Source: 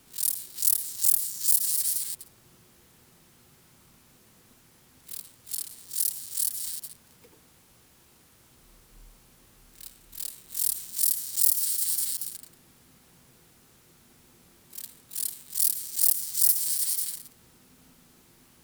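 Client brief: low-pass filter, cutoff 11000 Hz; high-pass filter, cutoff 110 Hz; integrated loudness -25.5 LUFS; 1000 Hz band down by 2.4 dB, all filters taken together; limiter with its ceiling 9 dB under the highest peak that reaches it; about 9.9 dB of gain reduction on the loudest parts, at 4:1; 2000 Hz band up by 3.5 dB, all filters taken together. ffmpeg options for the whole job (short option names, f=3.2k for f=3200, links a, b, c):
-af "highpass=110,lowpass=11k,equalizer=f=1k:t=o:g=-5,equalizer=f=2k:t=o:g=5.5,acompressor=threshold=-32dB:ratio=4,volume=13dB,alimiter=limit=-11dB:level=0:latency=1"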